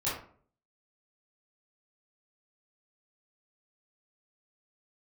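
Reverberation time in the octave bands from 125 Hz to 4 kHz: 0.65, 0.60, 0.55, 0.45, 0.40, 0.30 s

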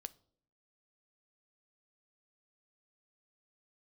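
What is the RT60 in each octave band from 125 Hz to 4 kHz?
0.80, 0.85, 0.70, 0.50, 0.35, 0.40 s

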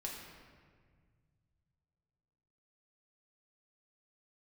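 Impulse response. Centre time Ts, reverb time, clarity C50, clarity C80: 71 ms, 1.8 s, 2.0 dB, 4.0 dB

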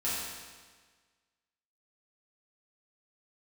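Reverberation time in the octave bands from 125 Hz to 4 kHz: 1.5, 1.5, 1.5, 1.5, 1.5, 1.4 s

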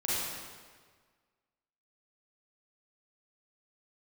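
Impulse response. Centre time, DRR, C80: 0.132 s, -8.5 dB, -1.5 dB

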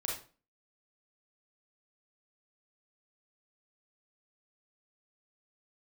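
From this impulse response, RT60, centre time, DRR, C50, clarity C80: 0.35 s, 38 ms, -3.0 dB, 3.0 dB, 10.0 dB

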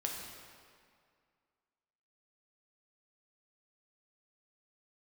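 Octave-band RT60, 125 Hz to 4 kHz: 2.1, 2.2, 2.1, 2.2, 1.9, 1.6 s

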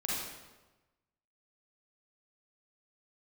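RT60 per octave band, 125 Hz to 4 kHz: 1.3, 1.2, 1.2, 1.1, 0.95, 0.90 s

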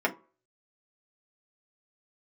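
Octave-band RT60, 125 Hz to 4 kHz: 0.30, 0.30, 0.35, 0.40, 0.20, 0.15 s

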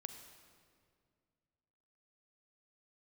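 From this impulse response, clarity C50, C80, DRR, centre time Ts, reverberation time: 7.5 dB, 8.5 dB, 7.0 dB, 29 ms, 2.1 s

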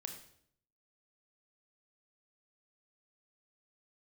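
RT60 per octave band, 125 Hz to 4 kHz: 0.90, 0.80, 0.70, 0.60, 0.55, 0.55 s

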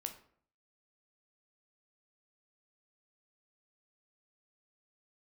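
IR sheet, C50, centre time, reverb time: 11.0 dB, 10 ms, 0.60 s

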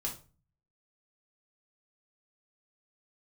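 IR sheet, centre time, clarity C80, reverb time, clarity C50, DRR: 17 ms, 16.5 dB, 0.35 s, 9.5 dB, -2.0 dB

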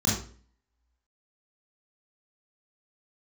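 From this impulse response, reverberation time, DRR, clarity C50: 0.45 s, -6.0 dB, 2.5 dB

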